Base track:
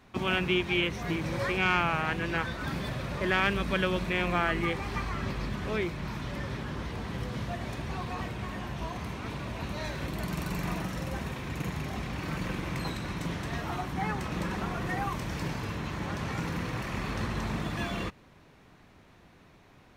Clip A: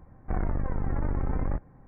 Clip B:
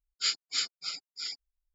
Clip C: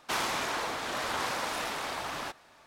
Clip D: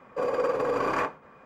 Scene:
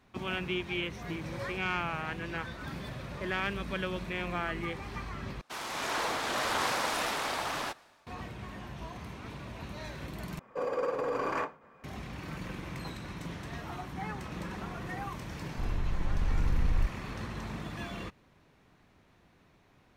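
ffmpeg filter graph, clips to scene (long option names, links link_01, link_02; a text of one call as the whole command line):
ffmpeg -i bed.wav -i cue0.wav -i cue1.wav -i cue2.wav -i cue3.wav -filter_complex "[0:a]volume=-6.5dB[link_01];[3:a]dynaudnorm=framelen=120:gausssize=7:maxgain=12dB[link_02];[1:a]asubboost=boost=9.5:cutoff=140[link_03];[link_01]asplit=3[link_04][link_05][link_06];[link_04]atrim=end=5.414[link_07];[link_02]atrim=end=2.66,asetpts=PTS-STARTPTS,volume=-10dB[link_08];[link_05]atrim=start=8.066:end=10.394[link_09];[4:a]atrim=end=1.45,asetpts=PTS-STARTPTS,volume=-5.5dB[link_10];[link_06]atrim=start=11.836[link_11];[link_03]atrim=end=1.87,asetpts=PTS-STARTPTS,volume=-11dB,afade=type=in:duration=0.004:curve=hsin,afade=type=out:start_time=1.866:duration=0.004:curve=hsin,adelay=15290[link_12];[link_07][link_08]acrossfade=duration=0.004:curve1=hsin:curve2=hsin[link_13];[link_13][link_09]acrossfade=duration=0.004:curve1=hsin:curve2=hsin[link_14];[link_14][link_10]acrossfade=duration=0.004:curve1=hsin:curve2=hsin[link_15];[link_15][link_11]acrossfade=duration=0.004:curve1=hsin:curve2=hsin[link_16];[link_16][link_12]amix=inputs=2:normalize=0" out.wav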